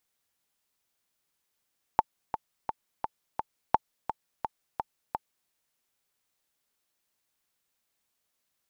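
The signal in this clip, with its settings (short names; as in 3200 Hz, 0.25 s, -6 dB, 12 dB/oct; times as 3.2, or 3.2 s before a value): metronome 171 bpm, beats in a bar 5, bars 2, 878 Hz, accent 10 dB -6.5 dBFS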